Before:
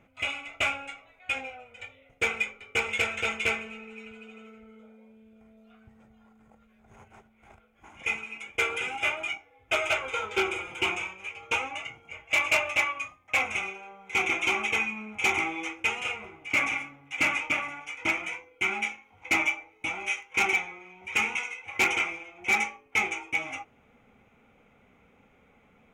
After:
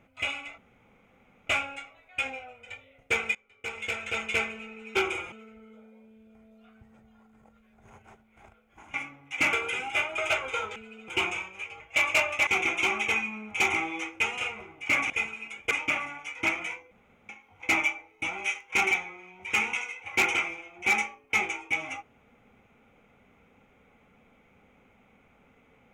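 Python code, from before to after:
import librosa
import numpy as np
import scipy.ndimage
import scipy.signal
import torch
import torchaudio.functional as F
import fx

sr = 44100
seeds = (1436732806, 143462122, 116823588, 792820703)

y = fx.edit(x, sr, fx.insert_room_tone(at_s=0.58, length_s=0.89),
    fx.fade_in_from(start_s=2.46, length_s=1.08, floor_db=-22.5),
    fx.swap(start_s=4.06, length_s=0.32, other_s=10.36, other_length_s=0.37),
    fx.swap(start_s=8.0, length_s=0.61, other_s=16.74, other_length_s=0.59),
    fx.cut(start_s=9.26, length_s=0.52),
    fx.cut(start_s=11.45, length_s=0.72),
    fx.cut(start_s=12.84, length_s=1.27),
    fx.room_tone_fill(start_s=18.53, length_s=0.38), tone=tone)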